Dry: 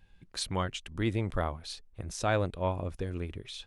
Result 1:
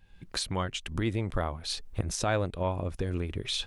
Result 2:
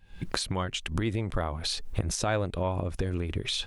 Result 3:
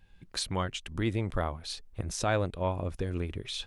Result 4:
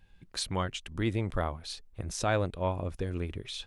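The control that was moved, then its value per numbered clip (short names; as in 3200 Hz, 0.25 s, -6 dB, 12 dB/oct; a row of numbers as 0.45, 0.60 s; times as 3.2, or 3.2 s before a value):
recorder AGC, rising by: 33, 90, 13, 5.1 dB/s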